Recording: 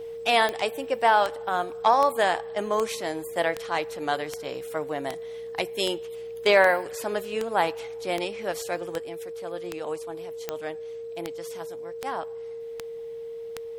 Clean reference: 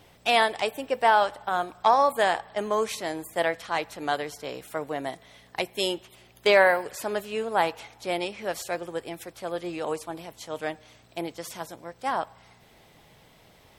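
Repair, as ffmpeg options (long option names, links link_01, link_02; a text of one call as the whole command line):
ffmpeg -i in.wav -af "adeclick=threshold=4,bandreject=frequency=460:width=30,asetnsamples=nb_out_samples=441:pad=0,asendcmd='8.98 volume volume 4.5dB',volume=0dB" out.wav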